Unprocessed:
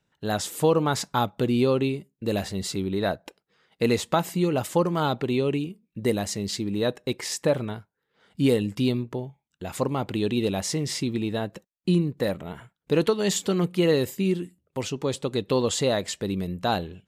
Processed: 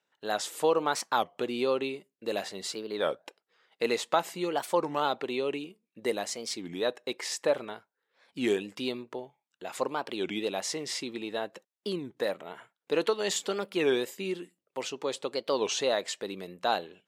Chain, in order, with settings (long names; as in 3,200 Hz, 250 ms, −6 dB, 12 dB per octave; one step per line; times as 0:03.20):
high-pass filter 450 Hz 12 dB per octave
high-shelf EQ 10,000 Hz −10 dB
wow of a warped record 33 1/3 rpm, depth 250 cents
level −1.5 dB